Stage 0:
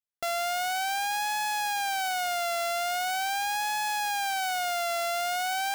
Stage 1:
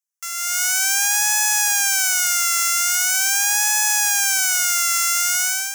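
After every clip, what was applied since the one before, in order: elliptic high-pass 950 Hz, stop band 40 dB; resonant high shelf 5 kHz +7 dB, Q 3; level rider gain up to 12 dB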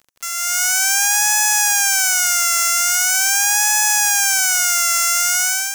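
crackle 47 per s -39 dBFS; in parallel at -5 dB: saturation -12.5 dBFS, distortion -8 dB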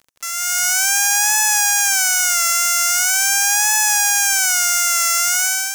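wow and flutter 22 cents

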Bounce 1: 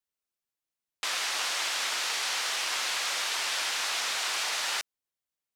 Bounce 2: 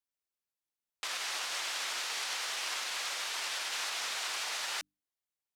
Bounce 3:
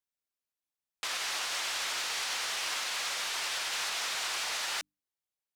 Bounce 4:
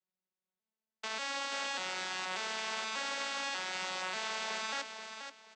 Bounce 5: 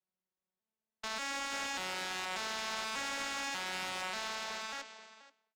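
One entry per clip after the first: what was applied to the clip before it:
hum notches 50/100/150/200/250/300 Hz; peak limiter -22 dBFS, peak gain reduction 4 dB; trim -4.5 dB
waveshaping leveller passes 1
vocoder on a broken chord minor triad, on F#3, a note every 590 ms; feedback delay 481 ms, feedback 25%, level -8 dB; trim -3 dB
fade out at the end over 1.54 s; one-sided clip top -40.5 dBFS; tape noise reduction on one side only decoder only; trim +1.5 dB

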